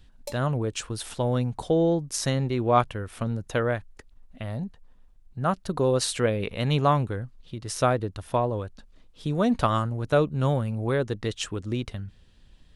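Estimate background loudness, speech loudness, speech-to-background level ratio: -44.0 LUFS, -26.5 LUFS, 17.5 dB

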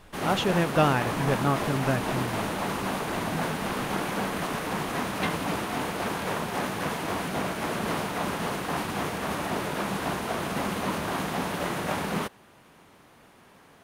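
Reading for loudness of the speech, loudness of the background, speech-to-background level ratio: -27.0 LUFS, -30.0 LUFS, 3.0 dB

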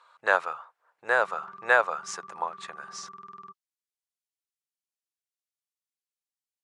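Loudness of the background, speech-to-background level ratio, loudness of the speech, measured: -46.0 LUFS, 19.0 dB, -27.0 LUFS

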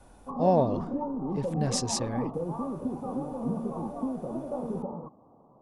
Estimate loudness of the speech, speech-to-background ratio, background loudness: -29.5 LUFS, 4.0 dB, -33.5 LUFS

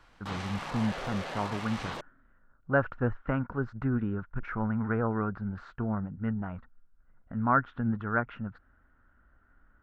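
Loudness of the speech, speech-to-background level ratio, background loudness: -32.0 LUFS, 6.5 dB, -38.5 LUFS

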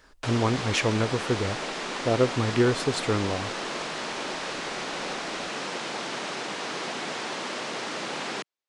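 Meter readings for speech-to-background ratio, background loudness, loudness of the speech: 5.5 dB, -32.0 LUFS, -26.5 LUFS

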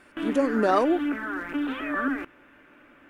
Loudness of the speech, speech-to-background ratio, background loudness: -24.5 LUFS, 5.5 dB, -30.0 LUFS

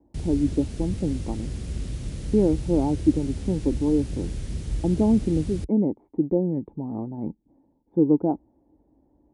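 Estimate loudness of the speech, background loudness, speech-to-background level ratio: -25.0 LUFS, -33.5 LUFS, 8.5 dB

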